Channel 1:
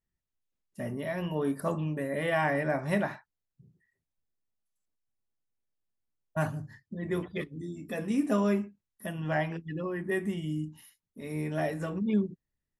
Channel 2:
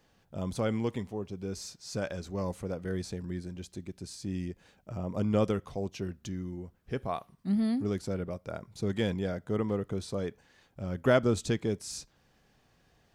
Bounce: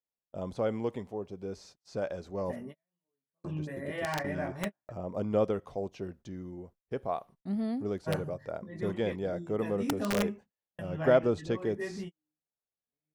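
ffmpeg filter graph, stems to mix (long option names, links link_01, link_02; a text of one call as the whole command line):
ffmpeg -i stem1.wav -i stem2.wav -filter_complex "[0:a]highshelf=frequency=9400:gain=-8,flanger=delay=16:depth=5.3:speed=0.67,aeval=exprs='(mod(9.44*val(0)+1,2)-1)/9.44':channel_layout=same,adelay=1700,volume=-3dB[link_01];[1:a]equalizer=frequency=600:width_type=o:width=2:gain=10,agate=range=-35dB:threshold=-44dB:ratio=16:detection=peak,acrossover=split=5500[link_02][link_03];[link_03]acompressor=threshold=-57dB:ratio=4:attack=1:release=60[link_04];[link_02][link_04]amix=inputs=2:normalize=0,volume=-7.5dB,asplit=3[link_05][link_06][link_07];[link_05]atrim=end=2.56,asetpts=PTS-STARTPTS,afade=type=out:start_time=2.556:duration=0.004:curve=hsin[link_08];[link_06]atrim=start=2.56:end=3.44,asetpts=PTS-STARTPTS,volume=0[link_09];[link_07]atrim=start=3.44,asetpts=PTS-STARTPTS,afade=type=in:duration=0.004:curve=hsin[link_10];[link_08][link_09][link_10]concat=n=3:v=0:a=1,asplit=2[link_11][link_12];[link_12]apad=whole_len=639086[link_13];[link_01][link_13]sidechaingate=range=-53dB:threshold=-60dB:ratio=16:detection=peak[link_14];[link_14][link_11]amix=inputs=2:normalize=0" out.wav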